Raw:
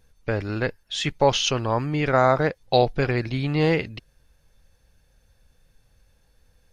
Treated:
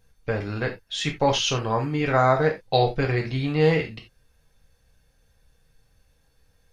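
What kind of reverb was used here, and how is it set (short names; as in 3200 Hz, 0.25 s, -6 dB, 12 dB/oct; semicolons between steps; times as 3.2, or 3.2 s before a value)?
non-linear reverb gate 0.11 s falling, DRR 1.5 dB; gain -3 dB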